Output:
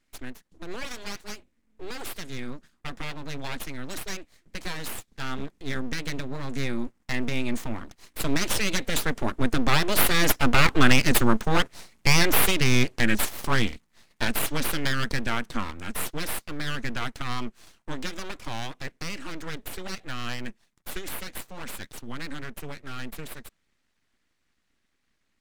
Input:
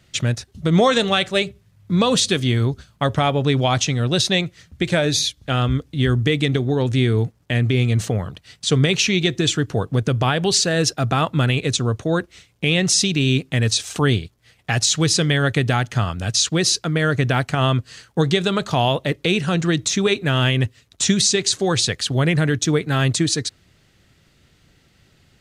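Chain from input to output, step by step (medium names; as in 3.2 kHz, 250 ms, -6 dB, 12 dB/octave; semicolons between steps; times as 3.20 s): Doppler pass-by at 11.17 s, 19 m/s, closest 23 m; ten-band graphic EQ 125 Hz +7 dB, 250 Hz +3 dB, 500 Hz -5 dB, 1 kHz +7 dB, 2 kHz +9 dB, 8 kHz +7 dB; full-wave rectifier; trim -1.5 dB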